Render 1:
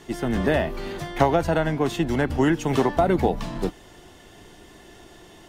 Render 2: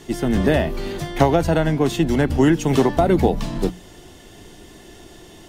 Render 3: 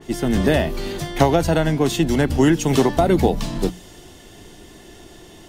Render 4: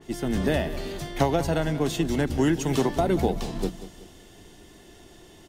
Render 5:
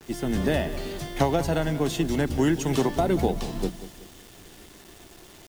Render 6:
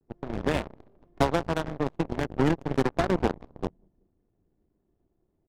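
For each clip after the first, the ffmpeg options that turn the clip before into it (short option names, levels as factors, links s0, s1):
-af "equalizer=f=1200:t=o:w=2.5:g=-6,bandreject=f=60:t=h:w=6,bandreject=f=120:t=h:w=6,bandreject=f=180:t=h:w=6,volume=2.11"
-af "adynamicequalizer=threshold=0.0141:dfrequency=3000:dqfactor=0.7:tfrequency=3000:tqfactor=0.7:attack=5:release=100:ratio=0.375:range=2.5:mode=boostabove:tftype=highshelf"
-af "aecho=1:1:187|374|561|748:0.2|0.0818|0.0335|0.0138,volume=0.447"
-af "acrusher=bits=7:mix=0:aa=0.000001"
-af "aeval=exprs='0.355*(cos(1*acos(clip(val(0)/0.355,-1,1)))-cos(1*PI/2))+0.00891*(cos(5*acos(clip(val(0)/0.355,-1,1)))-cos(5*PI/2))+0.0126*(cos(6*acos(clip(val(0)/0.355,-1,1)))-cos(6*PI/2))+0.0631*(cos(7*acos(clip(val(0)/0.355,-1,1)))-cos(7*PI/2))':c=same,adynamicsmooth=sensitivity=2.5:basefreq=510,volume=0.891"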